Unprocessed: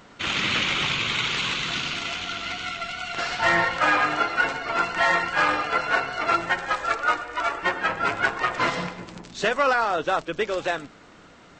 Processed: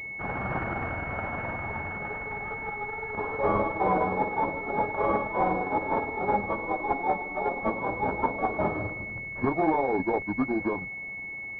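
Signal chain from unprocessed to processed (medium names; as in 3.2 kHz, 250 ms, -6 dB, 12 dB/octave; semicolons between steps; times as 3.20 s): rotating-head pitch shifter -8.5 st; saturation -11.5 dBFS, distortion -25 dB; class-D stage that switches slowly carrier 2.2 kHz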